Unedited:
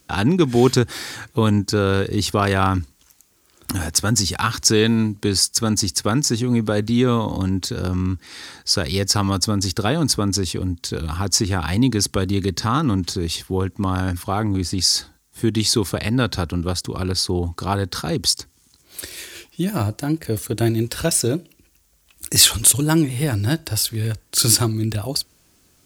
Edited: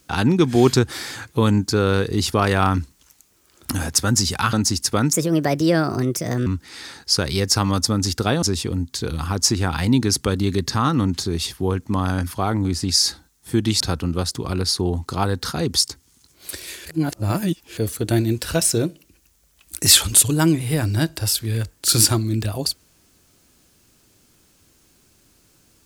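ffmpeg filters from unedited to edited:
-filter_complex "[0:a]asplit=8[a][b][c][d][e][f][g][h];[a]atrim=end=4.532[i];[b]atrim=start=5.648:end=6.254[j];[c]atrim=start=6.25:end=8.05,asetpts=PTS-STARTPTS,asetrate=59535,aresample=44100[k];[d]atrim=start=8.046:end=10.012[l];[e]atrim=start=10.318:end=15.702[m];[f]atrim=start=16.298:end=19.352[n];[g]atrim=start=19.348:end=20.272,asetpts=PTS-STARTPTS,areverse[o];[h]atrim=start=20.268[p];[i][j]acrossfade=d=0.004:c1=hsin:c2=hsin[q];[q][k]acrossfade=d=0.004:c1=hsin:c2=hsin[r];[r][l]acrossfade=d=0.004:c1=hsin:c2=hsin[s];[s][m]acrossfade=d=0.004:c1=hsin:c2=hsin[t];[t][n]acrossfade=d=0.004:c1=hsin:c2=hsin[u];[u][o]acrossfade=d=0.004:c1=hsin:c2=hsin[v];[v][p]acrossfade=d=0.004:c1=hsin:c2=hsin"

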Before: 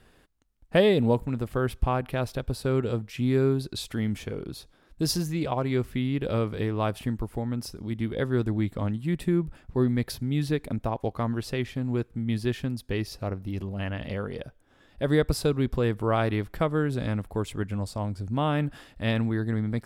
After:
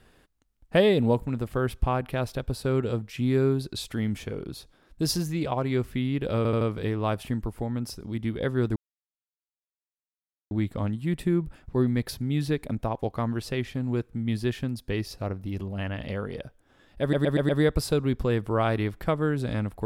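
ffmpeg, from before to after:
-filter_complex "[0:a]asplit=9[a][b][c][d][e][f][g][h][i];[a]atrim=end=6.452[j];[b]atrim=start=6.368:end=6.452[k];[c]atrim=start=6.368:end=6.452[l];[d]atrim=start=6.368:end=8.52,asetpts=PTS-STARTPTS,afade=t=out:st=2.148:d=0.004:c=hsin,apad=pad_dur=1.75[m];[e]atrim=start=8.52:end=15.142,asetpts=PTS-STARTPTS,afade=t=in:d=0.004:c=hsin[n];[f]atrim=start=15.018:end=15.142[o];[g]atrim=start=15.018:end=15.142[p];[h]atrim=start=15.018:end=15.142[q];[i]atrim=start=15.018[r];[j][k]acrossfade=d=0.004:c1=hsin:c2=hsin[s];[s][l]acrossfade=d=0.004:c1=hsin:c2=hsin[t];[m][n]concat=n=2:v=0:a=1[u];[t][u]acrossfade=d=0.004:c1=hsin:c2=hsin[v];[v][o]acrossfade=d=0.004:c1=hsin:c2=hsin[w];[w][p]acrossfade=d=0.004:c1=hsin:c2=hsin[x];[x][q]acrossfade=d=0.004:c1=hsin:c2=hsin[y];[y][r]acrossfade=d=0.004:c1=hsin:c2=hsin"

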